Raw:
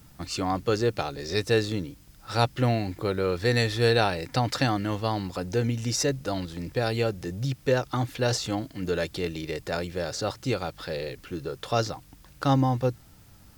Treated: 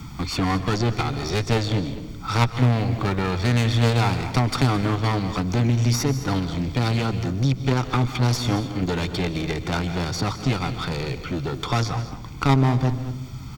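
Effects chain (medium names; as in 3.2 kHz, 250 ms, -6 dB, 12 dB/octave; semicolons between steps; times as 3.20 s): in parallel at -1.5 dB: level held to a coarse grid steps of 10 dB; on the sum: boxcar filter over 4 samples; comb 0.9 ms, depth 74%; one-sided clip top -31 dBFS; delay 215 ms -16.5 dB; on a send at -13.5 dB: reverberation, pre-delay 126 ms; on the sum: three bands compressed up and down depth 40%; trim +3 dB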